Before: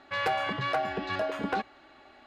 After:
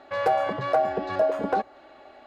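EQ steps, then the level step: dynamic EQ 2800 Hz, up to -7 dB, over -48 dBFS, Q 0.96; bell 580 Hz +10.5 dB 1.2 oct; 0.0 dB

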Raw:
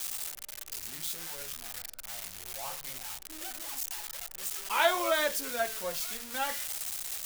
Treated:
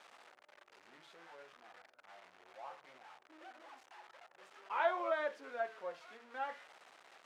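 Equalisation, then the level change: HPF 390 Hz 12 dB/oct; LPF 1500 Hz 12 dB/oct; -5.5 dB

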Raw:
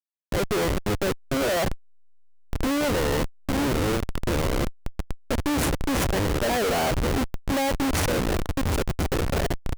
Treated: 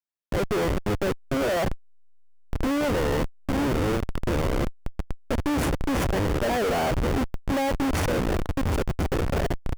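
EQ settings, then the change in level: high shelf 3100 Hz -7 dB; notch 4000 Hz, Q 25; 0.0 dB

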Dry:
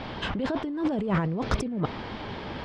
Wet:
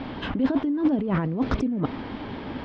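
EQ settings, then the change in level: air absorption 180 m; bell 270 Hz +10.5 dB 0.4 oct; high shelf 7300 Hz +7 dB; 0.0 dB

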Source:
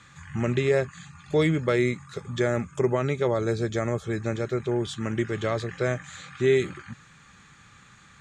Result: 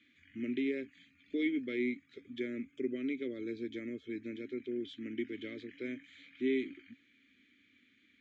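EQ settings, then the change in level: vowel filter i; air absorption 99 m; fixed phaser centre 370 Hz, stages 4; +3.5 dB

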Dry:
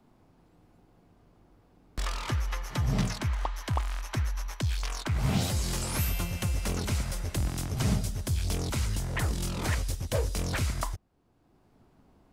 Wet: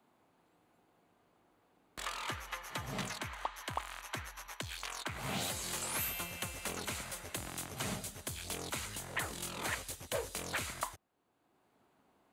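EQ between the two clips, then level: HPF 720 Hz 6 dB/oct; bell 5300 Hz -8.5 dB 0.36 oct; -1.5 dB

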